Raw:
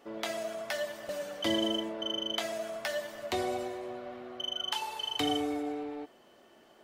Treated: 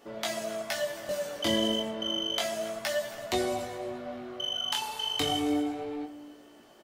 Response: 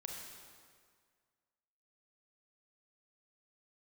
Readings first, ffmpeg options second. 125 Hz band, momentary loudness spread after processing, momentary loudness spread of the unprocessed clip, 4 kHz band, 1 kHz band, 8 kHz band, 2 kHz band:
+6.0 dB, 10 LU, 10 LU, +3.5 dB, +2.0 dB, +6.5 dB, +2.5 dB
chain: -filter_complex "[0:a]bass=f=250:g=4,treble=f=4000:g=5,asplit=2[s0][s1];[s1]adelay=272,lowpass=f=2000:p=1,volume=0.2,asplit=2[s2][s3];[s3]adelay=272,lowpass=f=2000:p=1,volume=0.33,asplit=2[s4][s5];[s5]adelay=272,lowpass=f=2000:p=1,volume=0.33[s6];[s2][s4][s6]amix=inputs=3:normalize=0[s7];[s0][s7]amix=inputs=2:normalize=0,flanger=delay=16.5:depth=6.7:speed=0.31,volume=1.78"

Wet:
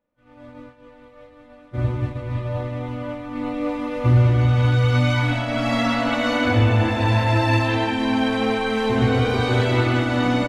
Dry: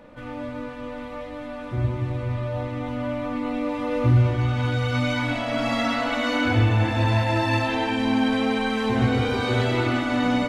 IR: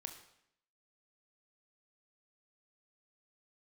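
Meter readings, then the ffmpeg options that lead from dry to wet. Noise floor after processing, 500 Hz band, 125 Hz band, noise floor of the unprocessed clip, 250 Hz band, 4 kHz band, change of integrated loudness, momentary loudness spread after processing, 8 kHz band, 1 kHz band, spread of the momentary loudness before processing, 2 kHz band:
-49 dBFS, +2.5 dB, +4.0 dB, -35 dBFS, +1.5 dB, +2.0 dB, +3.0 dB, 10 LU, no reading, +2.0 dB, 14 LU, +2.0 dB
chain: -filter_complex "[0:a]asplit=2[s0][s1];[s1]adelay=197,lowpass=f=2000:p=1,volume=0.422,asplit=2[s2][s3];[s3]adelay=197,lowpass=f=2000:p=1,volume=0.53,asplit=2[s4][s5];[s5]adelay=197,lowpass=f=2000:p=1,volume=0.53,asplit=2[s6][s7];[s7]adelay=197,lowpass=f=2000:p=1,volume=0.53,asplit=2[s8][s9];[s9]adelay=197,lowpass=f=2000:p=1,volume=0.53,asplit=2[s10][s11];[s11]adelay=197,lowpass=f=2000:p=1,volume=0.53[s12];[s0][s2][s4][s6][s8][s10][s12]amix=inputs=7:normalize=0,agate=range=0.0224:threshold=0.0794:ratio=3:detection=peak,volume=1.26"

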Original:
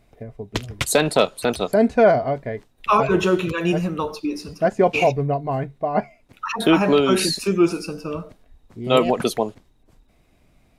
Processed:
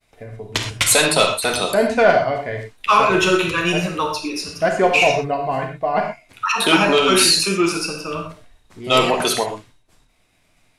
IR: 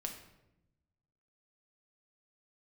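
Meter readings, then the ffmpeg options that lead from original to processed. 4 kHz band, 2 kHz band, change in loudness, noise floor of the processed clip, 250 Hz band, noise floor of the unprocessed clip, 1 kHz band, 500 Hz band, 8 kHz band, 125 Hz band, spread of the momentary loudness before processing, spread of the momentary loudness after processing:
+9.5 dB, +8.0 dB, +3.0 dB, -60 dBFS, -1.5 dB, -59 dBFS, +4.0 dB, +0.5 dB, +10.0 dB, -2.0 dB, 14 LU, 13 LU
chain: -filter_complex "[0:a]tiltshelf=f=800:g=-7,acontrast=85,agate=range=0.0224:threshold=0.00398:ratio=3:detection=peak[s0];[1:a]atrim=start_sample=2205,atrim=end_sample=3087,asetrate=22932,aresample=44100[s1];[s0][s1]afir=irnorm=-1:irlink=0,volume=0.562"

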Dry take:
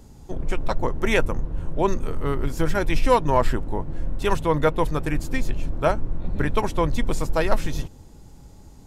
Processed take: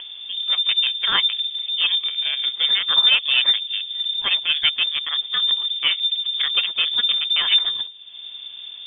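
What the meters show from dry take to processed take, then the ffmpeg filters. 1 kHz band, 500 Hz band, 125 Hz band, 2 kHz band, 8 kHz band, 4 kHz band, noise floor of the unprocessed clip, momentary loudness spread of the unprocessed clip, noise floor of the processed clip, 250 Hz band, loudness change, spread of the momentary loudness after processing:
-9.5 dB, under -20 dB, under -25 dB, +6.0 dB, under -40 dB, +25.0 dB, -46 dBFS, 10 LU, -38 dBFS, under -20 dB, +7.0 dB, 11 LU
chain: -filter_complex "[0:a]aemphasis=mode=production:type=cd,asplit=2[s0][s1];[s1]acrusher=bits=2:mix=0:aa=0.5,volume=0.596[s2];[s0][s2]amix=inputs=2:normalize=0,acompressor=mode=upward:threshold=0.112:ratio=2.5,lowpass=f=3100:t=q:w=0.5098,lowpass=f=3100:t=q:w=0.6013,lowpass=f=3100:t=q:w=0.9,lowpass=f=3100:t=q:w=2.563,afreqshift=-3600,volume=0.631"

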